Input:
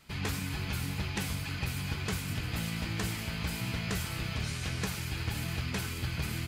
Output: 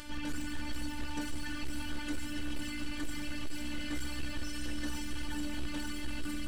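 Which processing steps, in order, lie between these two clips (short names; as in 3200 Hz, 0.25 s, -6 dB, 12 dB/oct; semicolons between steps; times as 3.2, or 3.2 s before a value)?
Bessel low-pass 10000 Hz, order 2; low shelf 290 Hz +9 dB; notch 3000 Hz, Q 10; in parallel at +3 dB: limiter -24 dBFS, peak gain reduction 8.5 dB; on the sum: upward compressor, threshold -27 dBFS; metallic resonator 62 Hz, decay 0.39 s, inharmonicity 0.03; robotiser 295 Hz; small resonant body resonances 1600/3000 Hz, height 15 dB, ringing for 80 ms; overloaded stage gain 31 dB; on a send: thin delay 0.144 s, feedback 85%, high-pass 3400 Hz, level -9 dB; on the sum: gain +3 dB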